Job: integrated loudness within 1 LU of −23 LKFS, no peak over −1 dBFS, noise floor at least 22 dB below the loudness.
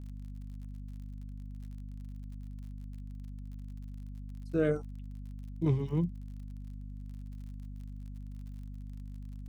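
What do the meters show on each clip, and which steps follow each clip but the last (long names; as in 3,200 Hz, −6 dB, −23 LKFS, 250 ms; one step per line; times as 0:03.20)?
crackle rate 49 per second; mains hum 50 Hz; hum harmonics up to 250 Hz; level of the hum −40 dBFS; integrated loudness −39.5 LKFS; sample peak −17.0 dBFS; target loudness −23.0 LKFS
→ click removal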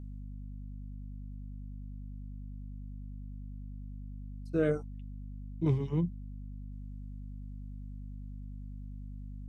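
crackle rate 0.11 per second; mains hum 50 Hz; hum harmonics up to 250 Hz; level of the hum −40 dBFS
→ mains-hum notches 50/100/150/200/250 Hz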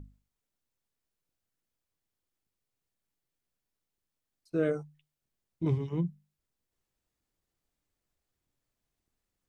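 mains hum none found; integrated loudness −33.0 LKFS; sample peak −18.5 dBFS; target loudness −23.0 LKFS
→ level +10 dB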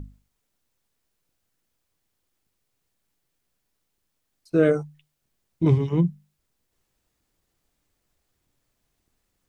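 integrated loudness −23.0 LKFS; sample peak −8.5 dBFS; background noise floor −77 dBFS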